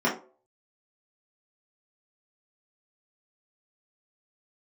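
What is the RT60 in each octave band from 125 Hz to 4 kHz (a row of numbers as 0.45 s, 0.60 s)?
0.35 s, 0.35 s, 0.50 s, 0.35 s, 0.25 s, 0.20 s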